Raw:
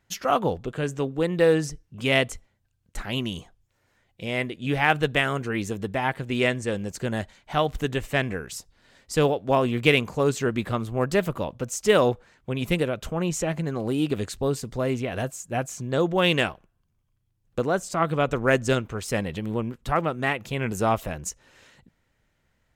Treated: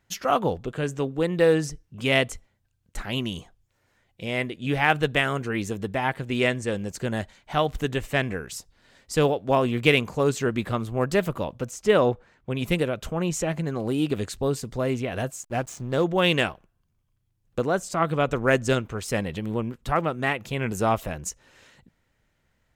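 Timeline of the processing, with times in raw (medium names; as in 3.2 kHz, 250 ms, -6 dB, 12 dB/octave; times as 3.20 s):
11.71–12.50 s: treble shelf 3.7 kHz -9.5 dB
15.43–16.04 s: hysteresis with a dead band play -35 dBFS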